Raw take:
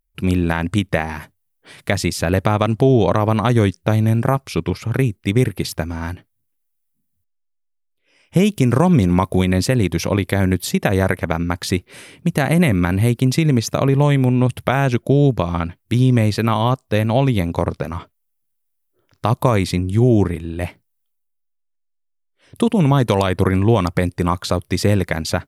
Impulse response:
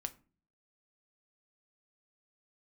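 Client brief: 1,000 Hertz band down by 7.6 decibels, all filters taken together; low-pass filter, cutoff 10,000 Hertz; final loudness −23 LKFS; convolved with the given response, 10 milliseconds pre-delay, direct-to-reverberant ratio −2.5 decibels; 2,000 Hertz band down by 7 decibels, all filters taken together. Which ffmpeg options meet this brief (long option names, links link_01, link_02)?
-filter_complex "[0:a]lowpass=10000,equalizer=frequency=1000:width_type=o:gain=-9,equalizer=frequency=2000:width_type=o:gain=-6,asplit=2[link_01][link_02];[1:a]atrim=start_sample=2205,adelay=10[link_03];[link_02][link_03]afir=irnorm=-1:irlink=0,volume=4dB[link_04];[link_01][link_04]amix=inputs=2:normalize=0,volume=-9dB"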